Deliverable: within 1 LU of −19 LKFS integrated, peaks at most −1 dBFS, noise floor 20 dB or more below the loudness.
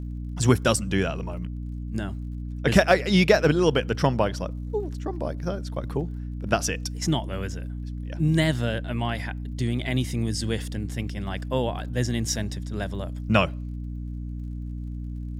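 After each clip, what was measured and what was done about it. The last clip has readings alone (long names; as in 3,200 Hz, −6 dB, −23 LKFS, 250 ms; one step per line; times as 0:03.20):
crackle rate 48 per second; mains hum 60 Hz; hum harmonics up to 300 Hz; level of the hum −30 dBFS; integrated loudness −26.5 LKFS; sample peak −4.5 dBFS; target loudness −19.0 LKFS
→ click removal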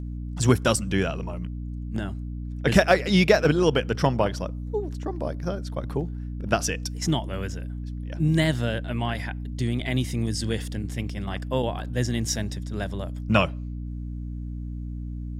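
crackle rate 0.39 per second; mains hum 60 Hz; hum harmonics up to 300 Hz; level of the hum −30 dBFS
→ hum removal 60 Hz, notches 5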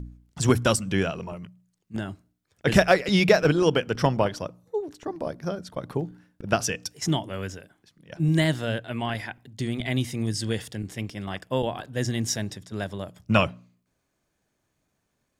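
mains hum none found; integrated loudness −26.0 LKFS; sample peak −4.5 dBFS; target loudness −19.0 LKFS
→ level +7 dB
brickwall limiter −1 dBFS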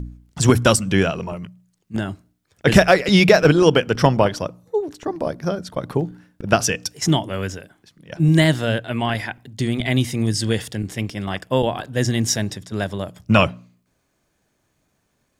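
integrated loudness −19.5 LKFS; sample peak −1.0 dBFS; background noise floor −69 dBFS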